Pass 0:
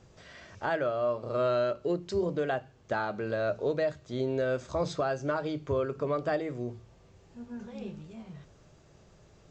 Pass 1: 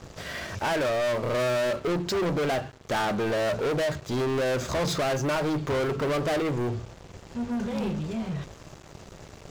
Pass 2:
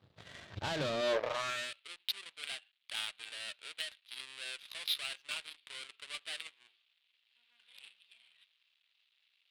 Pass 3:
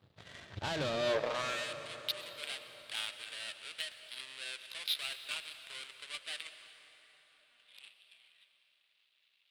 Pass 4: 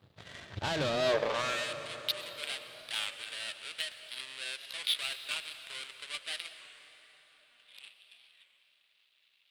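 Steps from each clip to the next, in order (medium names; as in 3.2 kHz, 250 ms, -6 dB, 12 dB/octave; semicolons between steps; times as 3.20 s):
waveshaping leveller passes 5; trim -3 dB
resonant high shelf 5 kHz -10 dB, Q 3; high-pass sweep 100 Hz -> 2.7 kHz, 0.70–1.72 s; Chebyshev shaper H 7 -18 dB, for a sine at -12.5 dBFS; trim -8.5 dB
plate-style reverb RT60 4.7 s, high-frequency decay 0.65×, pre-delay 90 ms, DRR 9 dB
warped record 33 1/3 rpm, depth 100 cents; trim +3.5 dB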